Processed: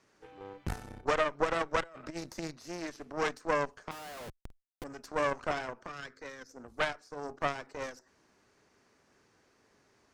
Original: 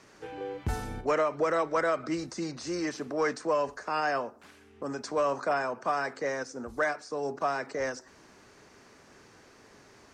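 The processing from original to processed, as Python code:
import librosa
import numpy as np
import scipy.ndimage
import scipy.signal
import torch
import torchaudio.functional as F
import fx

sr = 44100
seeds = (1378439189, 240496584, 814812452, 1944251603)

y = fx.over_compress(x, sr, threshold_db=-32.0, ratio=-0.5, at=(1.82, 2.5), fade=0.02)
y = fx.schmitt(y, sr, flips_db=-43.0, at=(3.91, 4.84))
y = fx.fixed_phaser(y, sr, hz=3000.0, stages=6, at=(5.86, 6.48), fade=0.02)
y = fx.cheby_harmonics(y, sr, harmonics=(2, 3), levels_db=(-8, -12), full_scale_db=-17.5)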